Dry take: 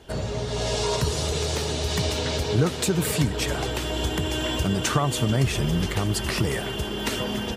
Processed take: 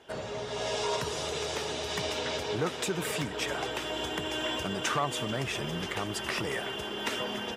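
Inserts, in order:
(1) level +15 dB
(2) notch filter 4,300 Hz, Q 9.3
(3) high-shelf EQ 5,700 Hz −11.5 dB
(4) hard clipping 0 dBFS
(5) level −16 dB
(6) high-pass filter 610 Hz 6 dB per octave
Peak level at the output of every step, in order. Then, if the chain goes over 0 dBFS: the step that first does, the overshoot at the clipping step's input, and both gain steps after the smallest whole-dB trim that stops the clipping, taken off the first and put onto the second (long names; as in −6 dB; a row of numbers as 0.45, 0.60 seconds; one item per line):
+7.5, +8.0, +7.5, 0.0, −16.0, −15.5 dBFS
step 1, 7.5 dB
step 1 +7 dB, step 5 −8 dB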